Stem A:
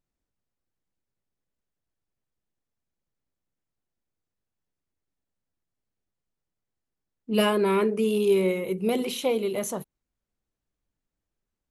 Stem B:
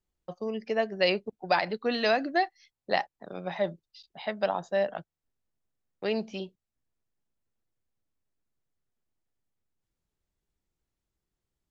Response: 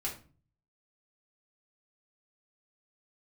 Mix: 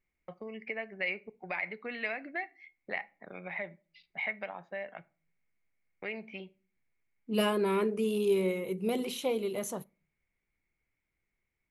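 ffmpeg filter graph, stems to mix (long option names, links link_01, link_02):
-filter_complex "[0:a]volume=-6.5dB,asplit=2[link_01][link_02];[link_02]volume=-23.5dB[link_03];[1:a]acompressor=threshold=-41dB:ratio=2.5,lowpass=frequency=2200:width_type=q:width=14,volume=-4dB,asplit=2[link_04][link_05];[link_05]volume=-15.5dB[link_06];[2:a]atrim=start_sample=2205[link_07];[link_03][link_06]amix=inputs=2:normalize=0[link_08];[link_08][link_07]afir=irnorm=-1:irlink=0[link_09];[link_01][link_04][link_09]amix=inputs=3:normalize=0"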